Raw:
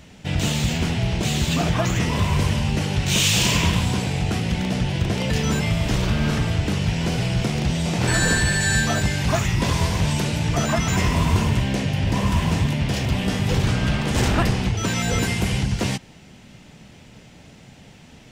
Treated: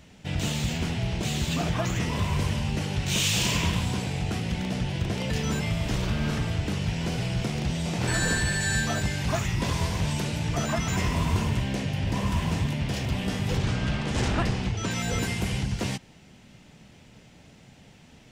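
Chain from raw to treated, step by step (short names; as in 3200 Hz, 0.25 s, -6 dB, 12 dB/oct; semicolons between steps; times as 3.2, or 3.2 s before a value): 13.57–14.91 LPF 8400 Hz 12 dB/oct; gain -6 dB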